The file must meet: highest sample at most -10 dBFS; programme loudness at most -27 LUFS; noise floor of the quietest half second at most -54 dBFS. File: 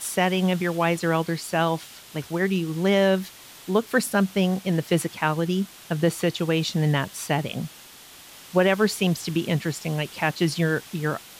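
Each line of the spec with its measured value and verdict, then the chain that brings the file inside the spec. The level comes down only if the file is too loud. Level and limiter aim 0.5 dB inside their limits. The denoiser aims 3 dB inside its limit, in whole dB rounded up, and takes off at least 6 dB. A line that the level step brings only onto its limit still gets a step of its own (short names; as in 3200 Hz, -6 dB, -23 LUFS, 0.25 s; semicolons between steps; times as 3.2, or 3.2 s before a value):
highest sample -8.0 dBFS: fail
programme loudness -24.0 LUFS: fail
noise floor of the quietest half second -46 dBFS: fail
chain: denoiser 8 dB, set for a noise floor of -46 dBFS; gain -3.5 dB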